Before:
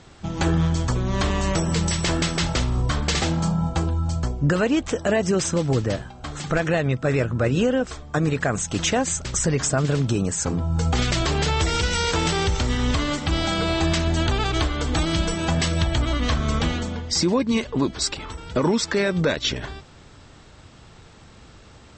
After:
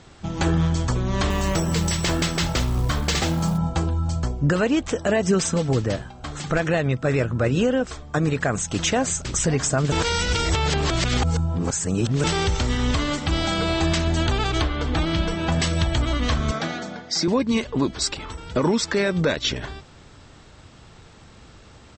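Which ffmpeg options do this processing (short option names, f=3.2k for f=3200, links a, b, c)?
-filter_complex "[0:a]asettb=1/sr,asplit=3[a][b][c];[a]atrim=end=1.304[d];[b]atrim=start=1.3:end=3.58,asetpts=PTS-STARTPTS,afade=t=in:d=0.004:c=qsin,afade=t=out:st=2.276:d=0.004:c=qsin,acrusher=bits=6:mode=log:mix=0:aa=0.000001[e];[c]atrim=start=3.576[f];[d][e]acrossfade=d=0.004:c1=hsin:c2=qsin[g];[g][f]acrossfade=d=0.004:c1=qsin:c2=hsin,asettb=1/sr,asplit=3[h][i][j];[h]atrim=end=5.264[k];[i]atrim=start=5.26:end=5.69,asetpts=PTS-STARTPTS,afade=t=in:d=0.004:c=qsin,afade=t=out:st=0.426:d=0.004:c=qsin,aecho=1:1:4.5:0.5,atrim=end_sample=18963[l];[j]atrim=start=5.686[m];[k][l]acrossfade=d=0.004:c1=hsin:c2=qsin[n];[n][m]acrossfade=d=0.004:c1=qsin:c2=hsin,asplit=2[o][p];[p]afade=t=in:st=8.46:d=0.01,afade=t=out:st=9.41:d=0.01,aecho=0:1:550|1100|1650:0.188365|0.0565095|0.0169528[q];[o][q]amix=inputs=2:normalize=0,asettb=1/sr,asplit=3[r][s][t];[r]atrim=end=14.624[u];[s]atrim=start=14.62:end=15.52,asetpts=PTS-STARTPTS,afade=t=in:d=0.004:c=qsin,afade=t=out:st=0.896:d=0.004:c=qsin,lowpass=4.1k[v];[t]atrim=start=15.516[w];[u][v]acrossfade=d=0.004:c1=hsin:c2=qsin[x];[x][w]acrossfade=d=0.004:c1=qsin:c2=hsin,asettb=1/sr,asplit=3[y][z][aa];[y]atrim=end=16.514[ab];[z]atrim=start=16.51:end=17.28,asetpts=PTS-STARTPTS,afade=t=in:d=0.004:c=qsin,afade=t=out:st=0.766:d=0.004:c=qsin,highpass=f=160:w=0.5412,highpass=f=160:w=1.3066,equalizer=f=230:t=q:w=4:g=-7,equalizer=f=480:t=q:w=4:g=-6,equalizer=f=680:t=q:w=4:g=7,equalizer=f=990:t=q:w=4:g=-6,equalizer=f=1.5k:t=q:w=4:g=4,equalizer=f=2.9k:t=q:w=4:g=-8,lowpass=f=6.6k:w=0.5412,lowpass=f=6.6k:w=1.3066[ac];[aa]atrim=start=17.276[ad];[ab][ac]acrossfade=d=0.004:c1=hsin:c2=qsin[ae];[ae][ad]acrossfade=d=0.004:c1=qsin:c2=hsin,asplit=3[af][ag][ah];[af]atrim=end=9.922[ai];[ag]atrim=start=9.918:end=12.242,asetpts=PTS-STARTPTS,areverse[aj];[ah]atrim=start=12.238[ak];[ai][aj]acrossfade=d=0.004:c1=hsin:c2=hsin[al];[al][ak]acrossfade=d=0.004:c1=hsin:c2=hsin"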